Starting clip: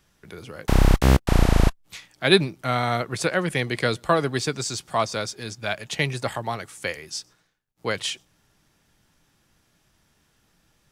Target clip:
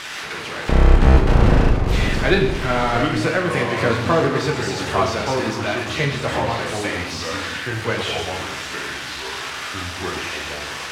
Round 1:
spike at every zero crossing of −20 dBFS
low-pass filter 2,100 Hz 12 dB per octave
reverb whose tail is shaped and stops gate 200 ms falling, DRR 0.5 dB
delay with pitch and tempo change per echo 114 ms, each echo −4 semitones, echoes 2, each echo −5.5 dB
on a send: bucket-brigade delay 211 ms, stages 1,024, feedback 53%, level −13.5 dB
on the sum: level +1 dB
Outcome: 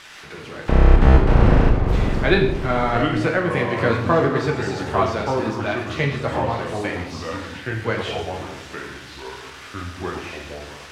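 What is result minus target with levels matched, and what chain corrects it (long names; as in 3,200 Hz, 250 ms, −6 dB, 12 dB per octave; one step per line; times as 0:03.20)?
spike at every zero crossing: distortion −11 dB
spike at every zero crossing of −9 dBFS
low-pass filter 2,100 Hz 12 dB per octave
reverb whose tail is shaped and stops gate 200 ms falling, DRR 0.5 dB
delay with pitch and tempo change per echo 114 ms, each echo −4 semitones, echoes 2, each echo −5.5 dB
on a send: bucket-brigade delay 211 ms, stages 1,024, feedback 53%, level −13.5 dB
on the sum: level +1 dB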